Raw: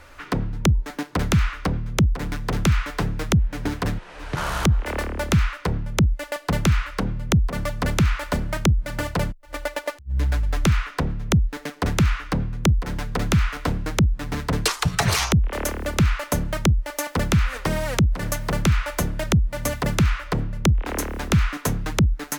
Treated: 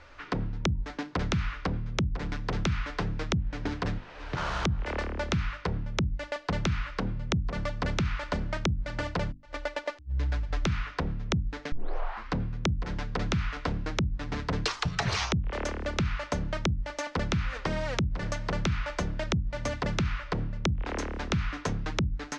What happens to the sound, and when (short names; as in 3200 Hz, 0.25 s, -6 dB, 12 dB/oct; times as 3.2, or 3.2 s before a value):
11.72 tape start 0.63 s
whole clip: LPF 5800 Hz 24 dB/oct; notches 50/100/150/200/250/300 Hz; compressor, threshold -19 dBFS; gain -5 dB